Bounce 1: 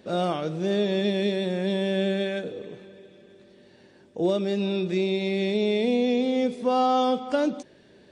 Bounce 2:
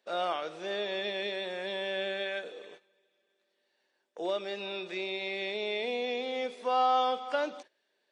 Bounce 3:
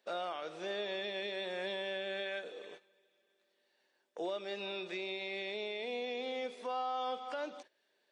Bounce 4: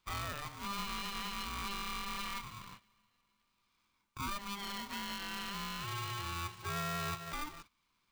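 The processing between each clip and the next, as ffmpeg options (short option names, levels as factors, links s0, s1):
-filter_complex "[0:a]agate=range=0.158:threshold=0.01:ratio=16:detection=peak,highpass=760,acrossover=split=4100[s0][s1];[s1]acompressor=threshold=0.00112:ratio=4:attack=1:release=60[s2];[s0][s2]amix=inputs=2:normalize=0"
-af "alimiter=level_in=1.88:limit=0.0631:level=0:latency=1:release=397,volume=0.531"
-af "aeval=exprs='val(0)*sgn(sin(2*PI*600*n/s))':c=same,volume=0.891"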